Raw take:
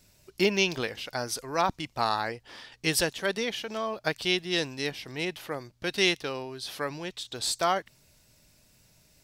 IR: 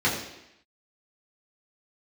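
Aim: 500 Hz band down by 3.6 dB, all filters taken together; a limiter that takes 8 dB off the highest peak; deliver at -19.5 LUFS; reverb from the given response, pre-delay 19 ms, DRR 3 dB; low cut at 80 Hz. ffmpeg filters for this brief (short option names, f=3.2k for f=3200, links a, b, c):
-filter_complex "[0:a]highpass=80,equalizer=f=500:t=o:g=-5,alimiter=limit=-17.5dB:level=0:latency=1,asplit=2[a][b];[1:a]atrim=start_sample=2205,adelay=19[c];[b][c]afir=irnorm=-1:irlink=0,volume=-17.5dB[d];[a][d]amix=inputs=2:normalize=0,volume=11.5dB"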